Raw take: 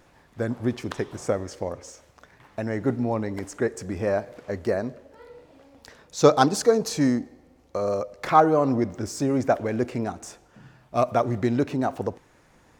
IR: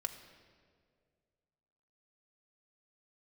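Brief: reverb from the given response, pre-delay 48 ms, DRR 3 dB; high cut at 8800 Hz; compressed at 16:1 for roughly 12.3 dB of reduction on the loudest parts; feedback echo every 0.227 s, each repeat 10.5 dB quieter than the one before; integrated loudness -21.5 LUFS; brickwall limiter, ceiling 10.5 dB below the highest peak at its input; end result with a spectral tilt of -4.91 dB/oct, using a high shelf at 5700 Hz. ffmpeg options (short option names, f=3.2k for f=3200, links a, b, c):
-filter_complex "[0:a]lowpass=8.8k,highshelf=f=5.7k:g=5.5,acompressor=threshold=-22dB:ratio=16,alimiter=limit=-22dB:level=0:latency=1,aecho=1:1:227|454|681:0.299|0.0896|0.0269,asplit=2[a][b];[1:a]atrim=start_sample=2205,adelay=48[c];[b][c]afir=irnorm=-1:irlink=0,volume=-2.5dB[d];[a][d]amix=inputs=2:normalize=0,volume=10dB"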